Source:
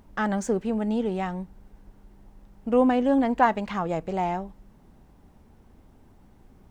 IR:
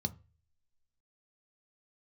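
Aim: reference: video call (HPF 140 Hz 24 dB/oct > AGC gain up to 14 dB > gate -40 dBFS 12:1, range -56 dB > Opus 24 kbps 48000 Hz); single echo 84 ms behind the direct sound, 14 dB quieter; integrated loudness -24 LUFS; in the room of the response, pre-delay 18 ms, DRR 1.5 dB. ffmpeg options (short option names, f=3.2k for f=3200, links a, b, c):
-filter_complex "[0:a]aecho=1:1:84:0.2,asplit=2[a][b];[1:a]atrim=start_sample=2205,adelay=18[c];[b][c]afir=irnorm=-1:irlink=0,volume=-2.5dB[d];[a][d]amix=inputs=2:normalize=0,highpass=f=140:w=0.5412,highpass=f=140:w=1.3066,dynaudnorm=m=14dB,agate=range=-56dB:threshold=-40dB:ratio=12,volume=-5dB" -ar 48000 -c:a libopus -b:a 24k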